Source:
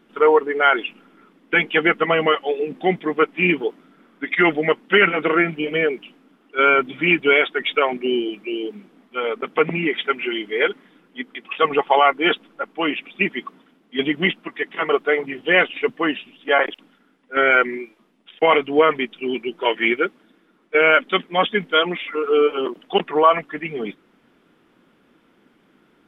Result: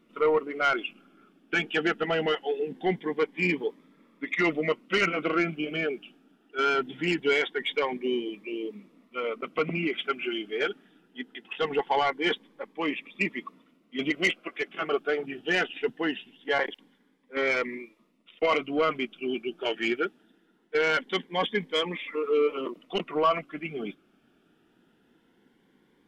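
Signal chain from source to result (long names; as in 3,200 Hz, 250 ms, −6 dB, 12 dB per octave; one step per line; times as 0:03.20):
0:14.10–0:14.68: octave-band graphic EQ 125/250/500/2,000 Hz −10/−5/+9/+6 dB
soft clipping −7.5 dBFS, distortion −18 dB
phaser whose notches keep moving one way rising 0.22 Hz
level −5.5 dB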